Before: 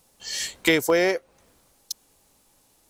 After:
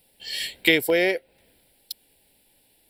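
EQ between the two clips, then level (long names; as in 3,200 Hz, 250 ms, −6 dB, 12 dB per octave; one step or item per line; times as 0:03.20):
low-shelf EQ 400 Hz −7.5 dB
phaser with its sweep stopped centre 2,800 Hz, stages 4
+4.5 dB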